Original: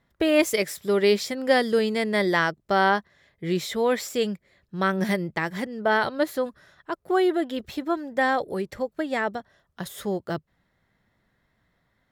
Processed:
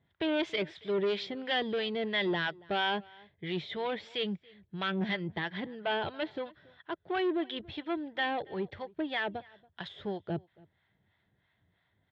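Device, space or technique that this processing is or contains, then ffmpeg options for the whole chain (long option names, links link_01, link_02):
guitar amplifier with harmonic tremolo: -filter_complex "[0:a]acrossover=split=710[link_01][link_02];[link_01]aeval=exprs='val(0)*(1-0.7/2+0.7/2*cos(2*PI*3*n/s))':channel_layout=same[link_03];[link_02]aeval=exprs='val(0)*(1-0.7/2-0.7/2*cos(2*PI*3*n/s))':channel_layout=same[link_04];[link_03][link_04]amix=inputs=2:normalize=0,asoftclip=type=tanh:threshold=-24dB,highpass=80,equalizer=frequency=91:width_type=q:width=4:gain=7,equalizer=frequency=240:width_type=q:width=4:gain=-7,equalizer=frequency=530:width_type=q:width=4:gain=-6,equalizer=frequency=1200:width_type=q:width=4:gain=-7,equalizer=frequency=3400:width_type=q:width=4:gain=8,lowpass=frequency=3500:width=0.5412,lowpass=frequency=3500:width=1.3066,asettb=1/sr,asplit=3[link_05][link_06][link_07];[link_05]atrim=end=5.514[link_08];[link_06]atrim=start=5.51:end=6.31,asetpts=PTS-STARTPTS,afade=type=in:duration=0.004:curve=qsin,afade=type=out:start_time=0.796:duration=0.004:curve=qsin,lowpass=frequency=5400:width=0.5412,lowpass=frequency=5400:width=1.3066[link_09];[link_07]atrim=start=6.306[link_10];[link_08][link_09]acrossfade=duration=0.004:curve1=hsin:curve2=qsin[link_11];[link_11][link_10]acrossfade=duration=0.004:curve1=qsin:curve2=hsin,asplit=2[link_12][link_13];[link_13]adelay=279.9,volume=-24dB,highshelf=frequency=4000:gain=-6.3[link_14];[link_12][link_14]amix=inputs=2:normalize=0"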